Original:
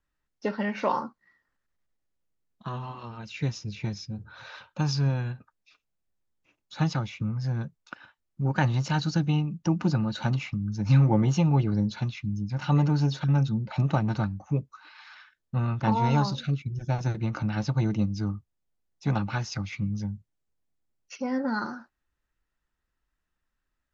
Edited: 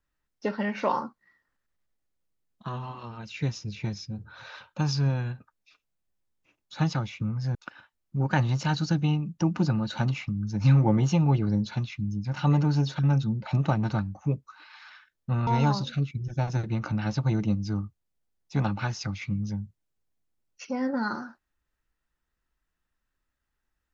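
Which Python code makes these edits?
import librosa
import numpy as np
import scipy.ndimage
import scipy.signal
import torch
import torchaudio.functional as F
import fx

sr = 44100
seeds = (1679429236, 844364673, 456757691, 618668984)

y = fx.edit(x, sr, fx.cut(start_s=7.55, length_s=0.25),
    fx.cut(start_s=15.72, length_s=0.26), tone=tone)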